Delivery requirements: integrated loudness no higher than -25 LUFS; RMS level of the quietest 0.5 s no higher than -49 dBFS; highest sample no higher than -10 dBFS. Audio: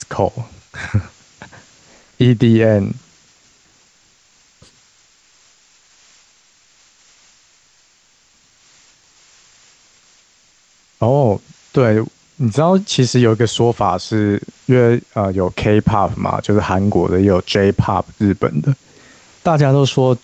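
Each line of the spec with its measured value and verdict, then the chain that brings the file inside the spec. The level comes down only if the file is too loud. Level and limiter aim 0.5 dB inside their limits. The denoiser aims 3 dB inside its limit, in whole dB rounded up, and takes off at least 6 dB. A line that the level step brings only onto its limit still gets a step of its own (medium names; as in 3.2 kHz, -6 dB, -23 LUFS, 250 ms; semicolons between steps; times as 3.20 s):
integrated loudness -15.5 LUFS: fail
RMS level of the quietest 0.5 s -54 dBFS: pass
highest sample -2.0 dBFS: fail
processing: trim -10 dB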